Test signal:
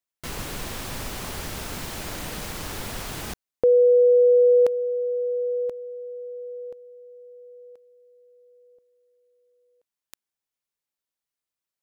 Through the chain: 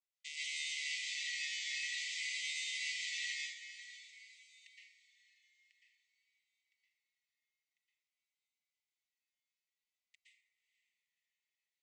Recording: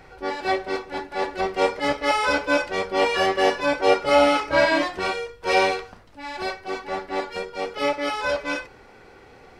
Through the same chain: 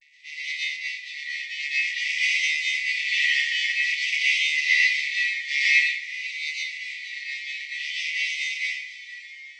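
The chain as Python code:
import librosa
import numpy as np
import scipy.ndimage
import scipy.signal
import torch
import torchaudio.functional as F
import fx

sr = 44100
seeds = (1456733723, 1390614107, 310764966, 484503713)

y = fx.chord_vocoder(x, sr, chord='bare fifth', root=50)
y = fx.brickwall_highpass(y, sr, low_hz=1800.0)
y = fx.echo_diffused(y, sr, ms=531, feedback_pct=41, wet_db=-13)
y = fx.vibrato(y, sr, rate_hz=0.51, depth_cents=51.0)
y = fx.rev_plate(y, sr, seeds[0], rt60_s=1.0, hf_ratio=0.5, predelay_ms=105, drr_db=-7.0)
y = y * 10.0 ** (7.0 / 20.0)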